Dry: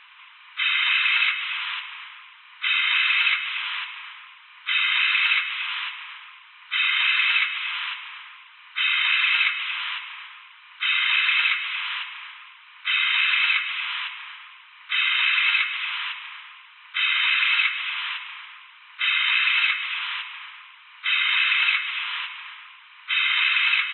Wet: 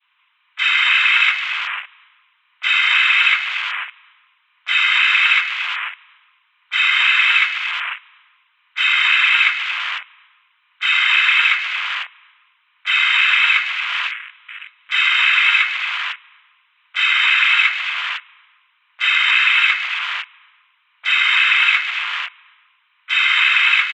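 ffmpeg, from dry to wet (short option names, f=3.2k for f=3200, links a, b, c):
-filter_complex "[0:a]asplit=2[a][b];[b]afade=t=in:st=13.36:d=0.01,afade=t=out:st=14.25:d=0.01,aecho=0:1:560|1120|1680|2240|2800|3360|3920:0.281838|0.169103|0.101462|0.0608771|0.0365262|0.0219157|0.0131494[c];[a][c]amix=inputs=2:normalize=0,afwtdn=0.0282,bandreject=f=60:t=h:w=6,bandreject=f=120:t=h:w=6,bandreject=f=180:t=h:w=6,bandreject=f=240:t=h:w=6,bandreject=f=300:t=h:w=6,bandreject=f=360:t=h:w=6,bandreject=f=420:t=h:w=6,adynamicequalizer=threshold=0.0158:dfrequency=1500:dqfactor=0.71:tfrequency=1500:tqfactor=0.71:attack=5:release=100:ratio=0.375:range=3.5:mode=boostabove:tftype=bell,volume=2dB"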